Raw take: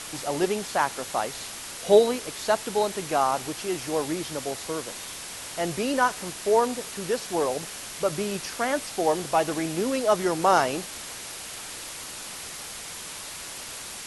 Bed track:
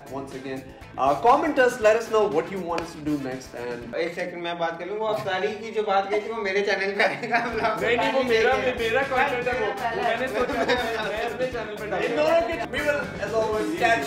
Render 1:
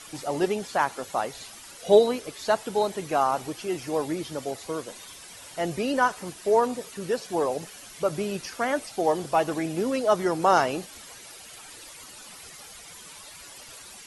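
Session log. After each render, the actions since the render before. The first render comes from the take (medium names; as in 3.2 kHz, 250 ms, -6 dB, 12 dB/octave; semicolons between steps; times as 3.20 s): noise reduction 11 dB, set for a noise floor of -38 dBFS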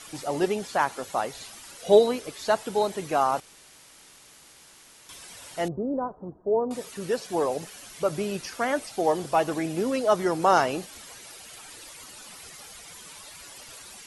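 3.40–5.09 s: room tone; 5.68–6.71 s: Gaussian low-pass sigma 11 samples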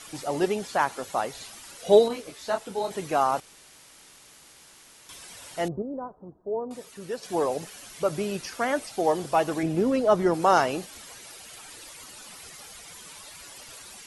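2.08–2.91 s: detune thickener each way 29 cents; 5.82–7.23 s: gain -6 dB; 9.63–10.34 s: tilt EQ -2 dB/octave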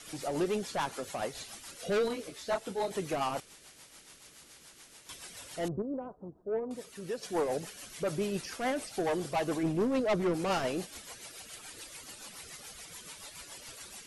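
saturation -23.5 dBFS, distortion -6 dB; rotary cabinet horn 7 Hz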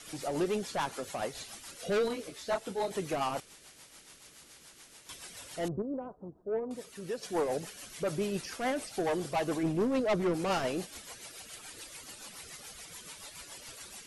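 no audible change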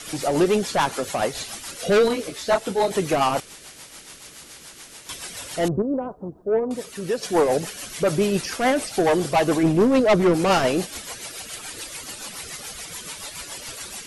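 trim +12 dB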